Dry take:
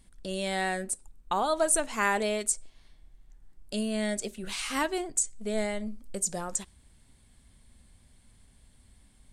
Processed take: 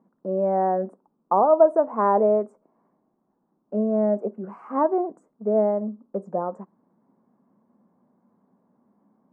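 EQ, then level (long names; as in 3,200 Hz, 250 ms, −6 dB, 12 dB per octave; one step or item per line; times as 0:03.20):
dynamic equaliser 580 Hz, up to +7 dB, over −42 dBFS, Q 1.2
elliptic band-pass filter 190–1,100 Hz, stop band 50 dB
+6.0 dB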